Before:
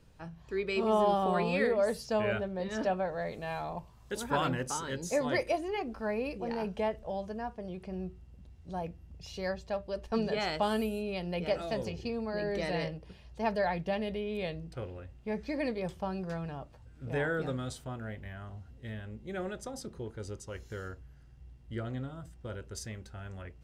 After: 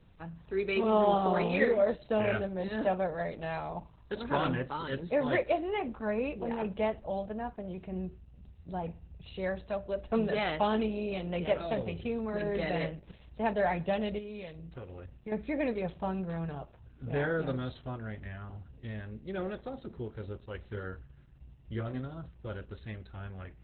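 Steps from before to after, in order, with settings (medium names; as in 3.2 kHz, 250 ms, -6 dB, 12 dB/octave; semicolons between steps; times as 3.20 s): 14.18–15.32 s: compression 5:1, threshold -41 dBFS, peak gain reduction 9.5 dB; 20.70–22.06 s: doubling 28 ms -8.5 dB; on a send at -20 dB: reverberation, pre-delay 42 ms; on the sum: trim +2 dB; Opus 8 kbps 48 kHz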